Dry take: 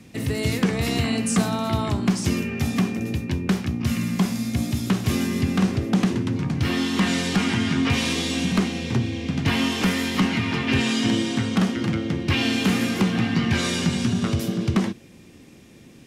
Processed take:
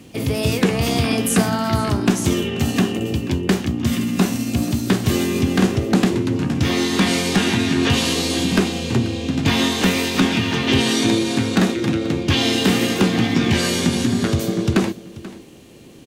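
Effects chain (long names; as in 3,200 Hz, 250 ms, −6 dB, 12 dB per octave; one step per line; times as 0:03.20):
formants moved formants +3 semitones
single-tap delay 485 ms −18 dB
level +4 dB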